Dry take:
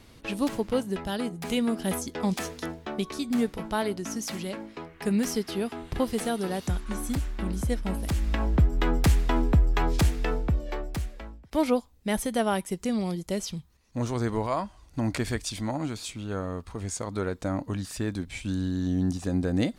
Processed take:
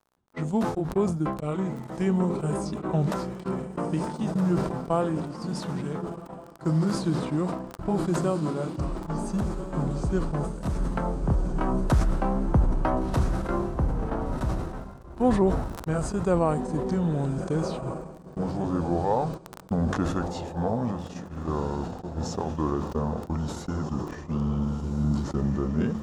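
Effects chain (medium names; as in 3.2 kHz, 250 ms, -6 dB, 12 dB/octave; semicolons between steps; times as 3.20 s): sawtooth pitch modulation +1 st, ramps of 1065 ms; high-pass 68 Hz 6 dB/octave; hum notches 60/120 Hz; in parallel at -1 dB: compression 4:1, threshold -37 dBFS, peak gain reduction 15.5 dB; on the sum: echo that smears into a reverb 1105 ms, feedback 49%, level -7.5 dB; gate -30 dBFS, range -51 dB; tape speed -24%; crackle 41 per s -44 dBFS; resonant high shelf 1.6 kHz -10 dB, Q 1.5; decay stretcher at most 54 dB/s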